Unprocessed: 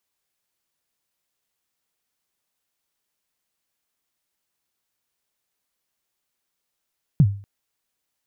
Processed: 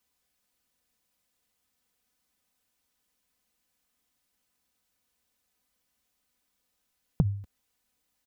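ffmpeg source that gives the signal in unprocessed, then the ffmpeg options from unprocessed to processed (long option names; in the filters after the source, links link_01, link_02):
-f lavfi -i "aevalsrc='0.422*pow(10,-3*t/0.41)*sin(2*PI*(170*0.057/log(100/170)*(exp(log(100/170)*min(t,0.057)/0.057)-1)+100*max(t-0.057,0)))':duration=0.24:sample_rate=44100"
-af "equalizer=frequency=84:width=0.48:gain=9,aecho=1:1:4:0.67,acompressor=threshold=-25dB:ratio=3"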